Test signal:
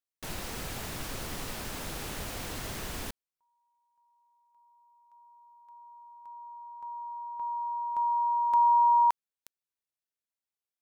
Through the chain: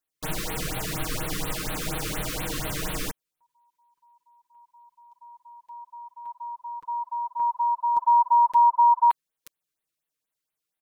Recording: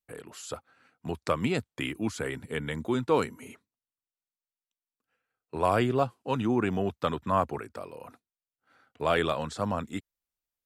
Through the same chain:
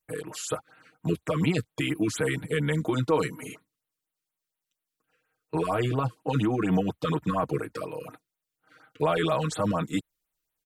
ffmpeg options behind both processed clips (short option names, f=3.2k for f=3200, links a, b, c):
-af "alimiter=limit=-23.5dB:level=0:latency=1:release=18,aecho=1:1:6.4:0.87,afftfilt=real='re*(1-between(b*sr/1024,690*pow(6500/690,0.5+0.5*sin(2*PI*4.2*pts/sr))/1.41,690*pow(6500/690,0.5+0.5*sin(2*PI*4.2*pts/sr))*1.41))':imag='im*(1-between(b*sr/1024,690*pow(6500/690,0.5+0.5*sin(2*PI*4.2*pts/sr))/1.41,690*pow(6500/690,0.5+0.5*sin(2*PI*4.2*pts/sr))*1.41))':win_size=1024:overlap=0.75,volume=5.5dB"